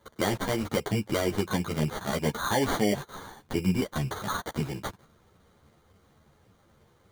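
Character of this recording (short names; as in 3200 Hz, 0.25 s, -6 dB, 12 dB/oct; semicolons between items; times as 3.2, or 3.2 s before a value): aliases and images of a low sample rate 2600 Hz, jitter 0%; a shimmering, thickened sound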